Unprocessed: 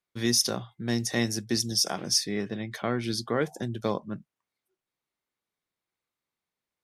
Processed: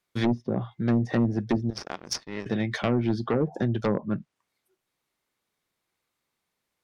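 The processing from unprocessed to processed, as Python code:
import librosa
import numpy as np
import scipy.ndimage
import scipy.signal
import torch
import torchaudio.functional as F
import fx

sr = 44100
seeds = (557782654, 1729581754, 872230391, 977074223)

y = fx.power_curve(x, sr, exponent=2.0, at=(1.7, 2.46))
y = fx.env_lowpass_down(y, sr, base_hz=360.0, full_db=-22.0)
y = fx.fold_sine(y, sr, drive_db=7, ceiling_db=-14.0)
y = y * 10.0 ** (-3.0 / 20.0)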